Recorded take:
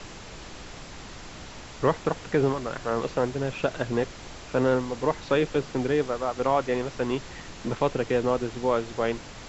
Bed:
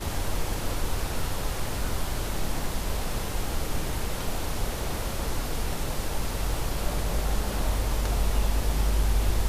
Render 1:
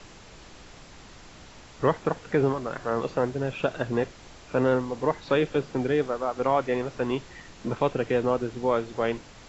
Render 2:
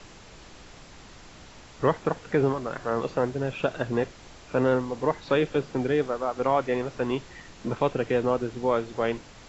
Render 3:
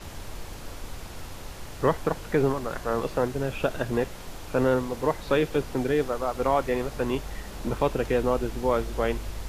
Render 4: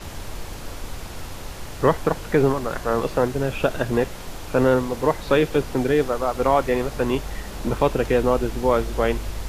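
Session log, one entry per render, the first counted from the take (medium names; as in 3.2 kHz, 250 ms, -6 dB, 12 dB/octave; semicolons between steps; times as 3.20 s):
noise print and reduce 6 dB
no audible change
add bed -10.5 dB
trim +5 dB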